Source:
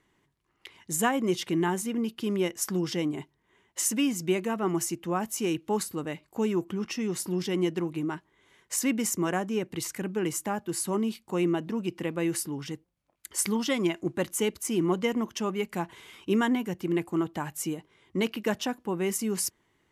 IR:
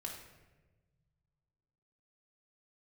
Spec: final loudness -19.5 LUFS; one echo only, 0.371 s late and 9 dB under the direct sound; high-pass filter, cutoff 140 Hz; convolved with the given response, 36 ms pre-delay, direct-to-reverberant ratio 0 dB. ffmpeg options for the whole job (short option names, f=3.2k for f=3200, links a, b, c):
-filter_complex "[0:a]highpass=140,aecho=1:1:371:0.355,asplit=2[a][b];[1:a]atrim=start_sample=2205,adelay=36[c];[b][c]afir=irnorm=-1:irlink=0,volume=1.5dB[d];[a][d]amix=inputs=2:normalize=0,volume=7dB"